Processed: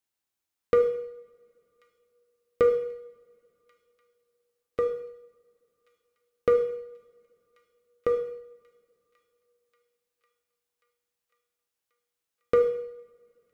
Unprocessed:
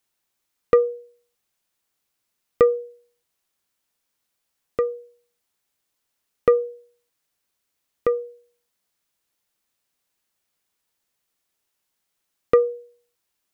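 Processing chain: waveshaping leveller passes 1; feedback echo behind a high-pass 1086 ms, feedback 69%, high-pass 2.4 kHz, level -23 dB; two-slope reverb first 0.75 s, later 3.5 s, from -27 dB, DRR 4.5 dB; trim -8 dB

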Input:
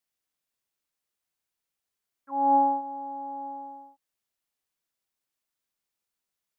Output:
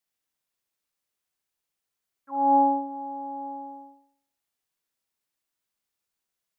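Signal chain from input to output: flutter echo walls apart 11.1 m, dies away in 0.59 s

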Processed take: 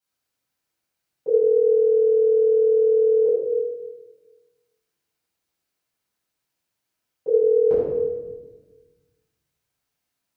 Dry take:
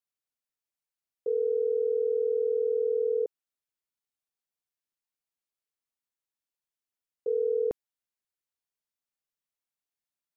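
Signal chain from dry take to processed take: high-pass 50 Hz; simulated room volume 810 m³, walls mixed, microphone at 7.9 m

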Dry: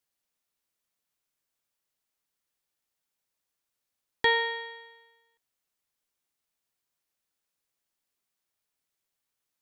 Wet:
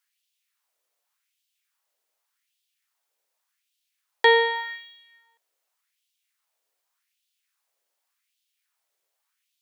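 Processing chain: LFO high-pass sine 0.86 Hz 470–3200 Hz; 4.55–4.98 s: decimation joined by straight lines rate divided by 2×; trim +4.5 dB

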